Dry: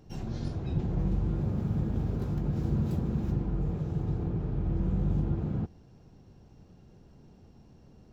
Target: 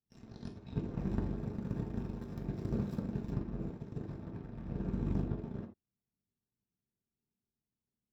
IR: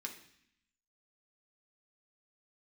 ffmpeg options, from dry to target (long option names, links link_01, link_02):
-filter_complex "[0:a]aeval=exprs='0.141*(cos(1*acos(clip(val(0)/0.141,-1,1)))-cos(1*PI/2))+0.0501*(cos(3*acos(clip(val(0)/0.141,-1,1)))-cos(3*PI/2))+0.01*(cos(5*acos(clip(val(0)/0.141,-1,1)))-cos(5*PI/2))+0.00562*(cos(7*acos(clip(val(0)/0.141,-1,1)))-cos(7*PI/2))':channel_layout=same,asettb=1/sr,asplit=3[link_01][link_02][link_03];[link_01]atrim=end=4.024[link_04];[link_02]atrim=start=4.02:end=4.69,asetpts=PTS-STARTPTS,afade=type=in:duration=0.004:curve=qsin,afade=type=out:start_time=0.666:duration=0.004:curve=qsin,volume=34.5dB,asoftclip=hard,volume=-34.5dB[link_05];[link_03]atrim=start=4.686[link_06];[link_04][link_05]acrossfade=duration=0.004:curve1=hsin:curve2=qsin[link_07];[link_07][link_06]acrossfade=duration=0.004:curve1=qsin:curve2=hsin[link_08];[1:a]atrim=start_sample=2205,atrim=end_sample=3969[link_09];[link_08][link_09]afir=irnorm=-1:irlink=0,volume=4dB"